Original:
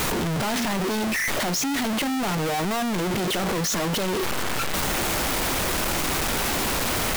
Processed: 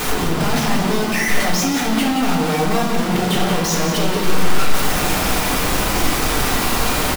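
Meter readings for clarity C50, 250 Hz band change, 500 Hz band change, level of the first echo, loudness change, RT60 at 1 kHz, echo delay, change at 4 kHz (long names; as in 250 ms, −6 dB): 2.0 dB, +7.0 dB, +6.0 dB, −7.5 dB, +5.5 dB, 1.4 s, 177 ms, +5.0 dB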